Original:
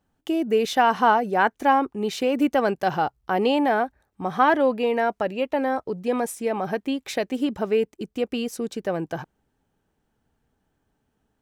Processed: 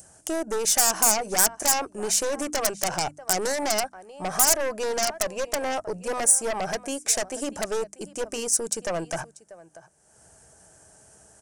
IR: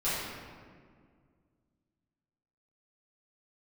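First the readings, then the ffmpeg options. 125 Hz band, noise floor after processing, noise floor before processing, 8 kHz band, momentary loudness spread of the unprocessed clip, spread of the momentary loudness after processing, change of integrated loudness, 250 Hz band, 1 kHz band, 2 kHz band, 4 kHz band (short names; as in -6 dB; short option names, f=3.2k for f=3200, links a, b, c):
-5.0 dB, -58 dBFS, -75 dBFS, +21.5 dB, 10 LU, 12 LU, -0.5 dB, -10.0 dB, -7.5 dB, -4.0 dB, +4.5 dB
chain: -filter_complex "[0:a]aresample=22050,aresample=44100,equalizer=f=250:t=o:w=0.33:g=-11,equalizer=f=630:t=o:w=0.33:g=11,equalizer=f=1.6k:t=o:w=0.33:g=5,acompressor=threshold=-21dB:ratio=2,adynamicequalizer=threshold=0.0282:dfrequency=1100:dqfactor=0.87:tfrequency=1100:tqfactor=0.87:attack=5:release=100:ratio=0.375:range=2:mode=boostabove:tftype=bell,highpass=55,asplit=2[a][b];[b]aecho=0:1:639:0.0794[c];[a][c]amix=inputs=2:normalize=0,aeval=exprs='0.316*(cos(1*acos(clip(val(0)/0.316,-1,1)))-cos(1*PI/2))+0.141*(cos(5*acos(clip(val(0)/0.316,-1,1)))-cos(5*PI/2))+0.0708*(cos(6*acos(clip(val(0)/0.316,-1,1)))-cos(6*PI/2))':c=same,acompressor=mode=upward:threshold=-31dB:ratio=2.5,bandreject=f=50:t=h:w=6,bandreject=f=100:t=h:w=6,bandreject=f=150:t=h:w=6,bandreject=f=200:t=h:w=6,bandreject=f=250:t=h:w=6,bandreject=f=300:t=h:w=6,aexciter=amount=12.4:drive=4.8:freq=5.5k,volume=-12dB"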